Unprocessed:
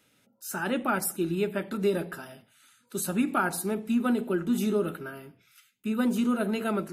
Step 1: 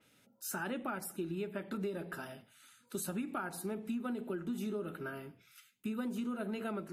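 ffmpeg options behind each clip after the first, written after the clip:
-af "acompressor=threshold=0.02:ratio=6,adynamicequalizer=threshold=0.00141:dfrequency=4100:dqfactor=0.7:tfrequency=4100:tqfactor=0.7:attack=5:release=100:ratio=0.375:range=3:mode=cutabove:tftype=highshelf,volume=0.841"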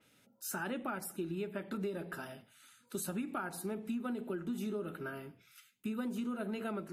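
-af anull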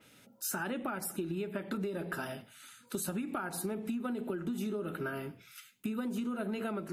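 -af "acompressor=threshold=0.01:ratio=6,volume=2.37"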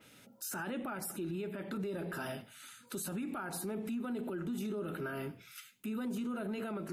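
-af "alimiter=level_in=2.66:limit=0.0631:level=0:latency=1:release=11,volume=0.376,volume=1.12"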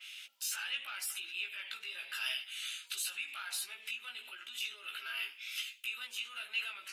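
-filter_complex "[0:a]asplit=2[s0][s1];[s1]highpass=f=720:p=1,volume=2.24,asoftclip=type=tanh:threshold=0.0282[s2];[s0][s2]amix=inputs=2:normalize=0,lowpass=f=6000:p=1,volume=0.501,highpass=f=2800:t=q:w=3.2,flanger=delay=15.5:depth=2.5:speed=0.88,volume=2.66"

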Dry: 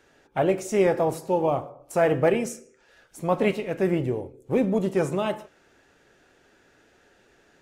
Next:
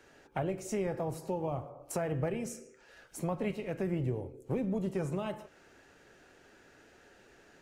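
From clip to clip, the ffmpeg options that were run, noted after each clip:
-filter_complex "[0:a]acrossover=split=140[s0][s1];[s1]acompressor=threshold=0.0178:ratio=4[s2];[s0][s2]amix=inputs=2:normalize=0,bandreject=f=3500:w=18"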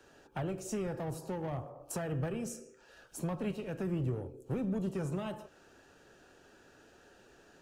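-filter_complex "[0:a]equalizer=f=2100:t=o:w=0.23:g=-13,acrossover=split=310|1100[s0][s1][s2];[s1]asoftclip=type=tanh:threshold=0.0106[s3];[s0][s3][s2]amix=inputs=3:normalize=0"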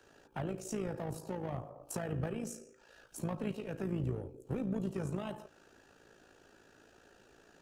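-af "tremolo=f=55:d=0.621,volume=1.12"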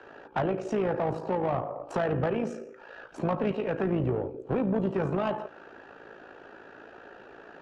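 -filter_complex "[0:a]adynamicsmooth=sensitivity=2:basefreq=2300,asplit=2[s0][s1];[s1]highpass=f=720:p=1,volume=7.94,asoftclip=type=tanh:threshold=0.0668[s2];[s0][s2]amix=inputs=2:normalize=0,lowpass=f=2700:p=1,volume=0.501,volume=2.24"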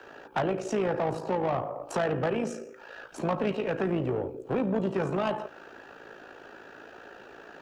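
-filter_complex "[0:a]acrossover=split=180[s0][s1];[s0]asoftclip=type=tanh:threshold=0.0158[s2];[s1]crystalizer=i=2.5:c=0[s3];[s2][s3]amix=inputs=2:normalize=0"

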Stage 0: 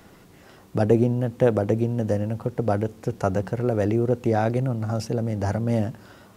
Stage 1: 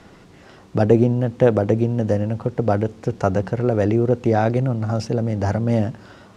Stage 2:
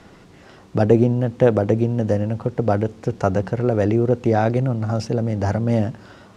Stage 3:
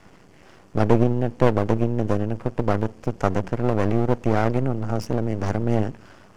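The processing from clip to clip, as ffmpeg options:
-af "lowpass=6600,volume=1.58"
-af anull
-af "asuperstop=centerf=3800:order=4:qfactor=3.6,aeval=exprs='max(val(0),0)':c=same"

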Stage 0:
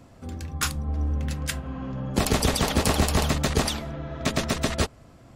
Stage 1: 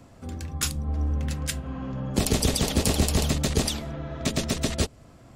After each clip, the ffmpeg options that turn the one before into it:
-filter_complex "[0:a]equalizer=f=7900:w=1.5:g=2,acrossover=split=640|2300[s0][s1][s2];[s1]acompressor=threshold=0.00891:ratio=6[s3];[s0][s3][s2]amix=inputs=3:normalize=0"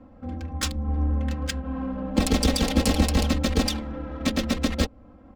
-af "adynamicsmooth=sensitivity=5:basefreq=1300,aecho=1:1:3.8:0.92"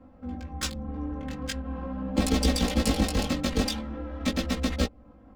-af "flanger=delay=15.5:depth=4.7:speed=0.44"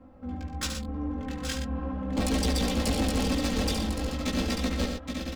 -filter_complex "[0:a]asplit=2[s0][s1];[s1]aecho=0:1:72|120|821|890:0.376|0.335|0.376|0.376[s2];[s0][s2]amix=inputs=2:normalize=0,asoftclip=type=tanh:threshold=0.0944"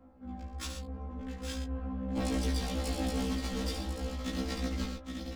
-af "afftfilt=real='re*1.73*eq(mod(b,3),0)':imag='im*1.73*eq(mod(b,3),0)':win_size=2048:overlap=0.75,volume=0.531"

